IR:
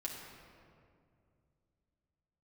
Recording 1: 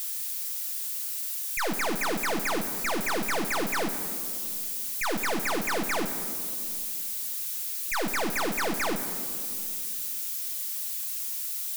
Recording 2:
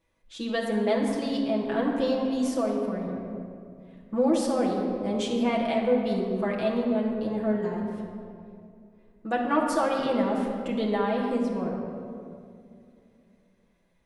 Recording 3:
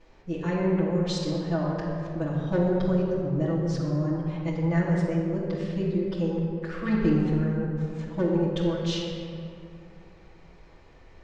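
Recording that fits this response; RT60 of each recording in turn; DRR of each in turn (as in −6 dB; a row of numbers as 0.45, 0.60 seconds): 2; non-exponential decay, 2.4 s, 2.4 s; 6.0, −4.0, −11.5 decibels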